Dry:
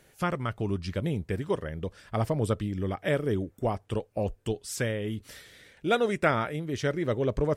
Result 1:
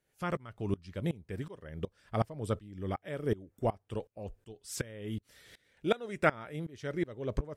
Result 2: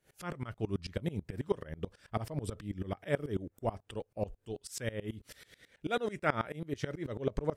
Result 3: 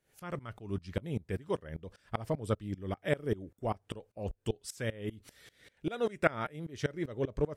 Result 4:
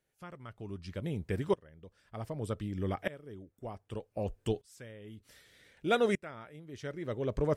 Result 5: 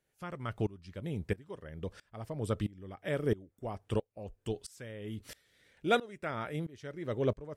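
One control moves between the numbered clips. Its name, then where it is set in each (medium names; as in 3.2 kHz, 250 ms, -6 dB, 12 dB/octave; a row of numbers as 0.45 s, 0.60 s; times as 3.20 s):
sawtooth tremolo in dB, rate: 2.7 Hz, 9.2 Hz, 5.1 Hz, 0.65 Hz, 1.5 Hz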